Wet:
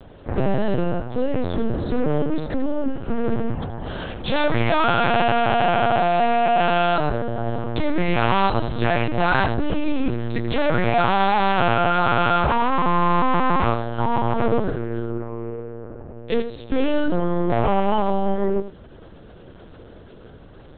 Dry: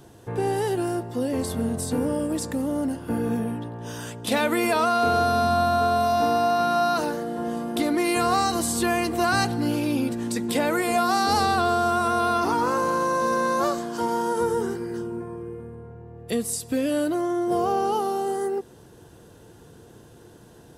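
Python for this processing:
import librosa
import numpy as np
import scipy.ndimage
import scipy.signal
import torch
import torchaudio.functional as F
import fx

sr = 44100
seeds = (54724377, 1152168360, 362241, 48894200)

p1 = 10.0 ** (-18.0 / 20.0) * (np.abs((x / 10.0 ** (-18.0 / 20.0) + 3.0) % 4.0 - 2.0) - 1.0)
p2 = p1 + fx.echo_single(p1, sr, ms=84, db=-11.0, dry=0)
p3 = fx.lpc_vocoder(p2, sr, seeds[0], excitation='pitch_kept', order=8)
y = F.gain(torch.from_numpy(p3), 5.5).numpy()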